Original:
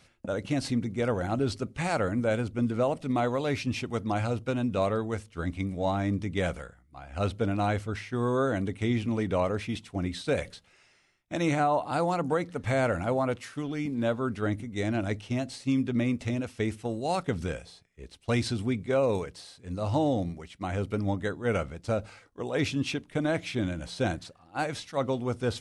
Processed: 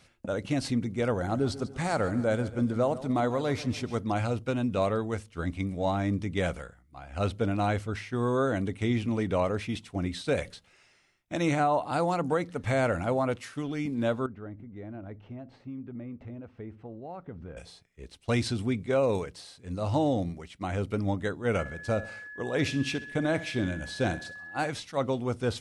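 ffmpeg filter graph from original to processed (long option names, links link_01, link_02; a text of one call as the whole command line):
ffmpeg -i in.wav -filter_complex "[0:a]asettb=1/sr,asplit=3[link_01][link_02][link_03];[link_01]atrim=end=1.134[link_04];[link_02]atrim=start=1.13:end=3.99,asetpts=PTS-STARTPTS,afade=type=in:duration=0.004:curve=qsin,afade=type=out:start_time=2.856:duration=0.004:curve=qsin,equalizer=frequency=2600:width=3.6:gain=-8,aecho=1:1:142|284|426|568:0.158|0.0792|0.0396|0.0198,atrim=end_sample=126126[link_05];[link_03]atrim=start=3.986[link_06];[link_04][link_05]acrossfade=duration=0.004:curve1=hsin:curve2=qsin[link_07];[link_07][link_06]acrossfade=duration=0.004:curve1=qsin:curve2=hsin,asettb=1/sr,asplit=3[link_08][link_09][link_10];[link_08]atrim=end=14.264[link_11];[link_09]atrim=start=14.26:end=17.57,asetpts=PTS-STARTPTS,afade=type=in:duration=0.004:curve=qsin,afade=type=out:start_time=3.306:duration=0.004:curve=qsin,lowpass=1300,acompressor=threshold=-47dB:ratio=2:attack=3.2:release=140:knee=1:detection=peak[link_12];[link_10]atrim=start=17.566[link_13];[link_11][link_12]acrossfade=duration=0.004:curve1=hsin:curve2=qsin[link_14];[link_14][link_13]acrossfade=duration=0.004:curve1=qsin:curve2=hsin,asettb=1/sr,asplit=3[link_15][link_16][link_17];[link_15]atrim=end=21.594[link_18];[link_16]atrim=start=21.59:end=24.7,asetpts=PTS-STARTPTS,afade=type=in:duration=0.004:curve=qsin,afade=type=out:start_time=3.106:duration=0.004:curve=qsin,aeval=exprs='val(0)+0.01*sin(2*PI*1700*n/s)':channel_layout=same,aecho=1:1:65|130|195|260:0.168|0.0722|0.031|0.0133,atrim=end_sample=137151[link_19];[link_17]atrim=start=24.696[link_20];[link_18][link_19]acrossfade=duration=0.004:curve1=hsin:curve2=qsin[link_21];[link_21][link_20]acrossfade=duration=0.004:curve1=qsin:curve2=hsin" out.wav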